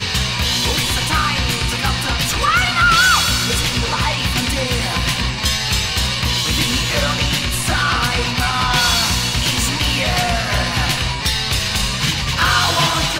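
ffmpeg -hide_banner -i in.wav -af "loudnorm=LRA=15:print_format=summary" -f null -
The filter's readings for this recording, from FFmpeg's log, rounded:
Input Integrated:    -16.2 LUFS
Input True Peak:      -3.3 dBTP
Input LRA:             1.8 LU
Input Threshold:     -26.2 LUFS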